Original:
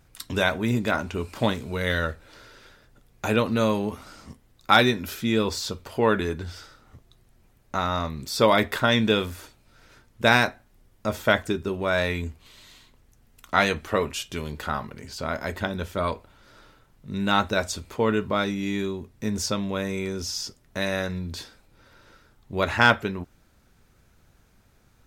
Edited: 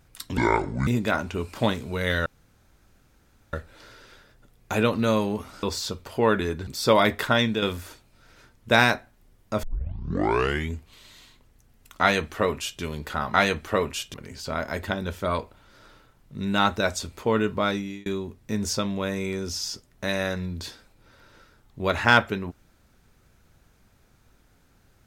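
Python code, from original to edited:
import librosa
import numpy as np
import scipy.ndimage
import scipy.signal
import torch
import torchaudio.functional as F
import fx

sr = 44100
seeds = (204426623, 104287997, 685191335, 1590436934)

y = fx.edit(x, sr, fx.speed_span(start_s=0.37, length_s=0.3, speed=0.6),
    fx.insert_room_tone(at_s=2.06, length_s=1.27),
    fx.cut(start_s=4.16, length_s=1.27),
    fx.cut(start_s=6.47, length_s=1.73),
    fx.fade_out_to(start_s=8.88, length_s=0.27, floor_db=-7.5),
    fx.tape_start(start_s=11.16, length_s=1.11),
    fx.duplicate(start_s=13.54, length_s=0.8, to_s=14.87),
    fx.fade_out_span(start_s=18.47, length_s=0.32), tone=tone)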